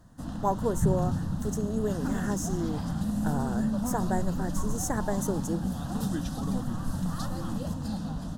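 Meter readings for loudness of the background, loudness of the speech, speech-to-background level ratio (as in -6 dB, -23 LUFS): -32.0 LUFS, -33.0 LUFS, -1.0 dB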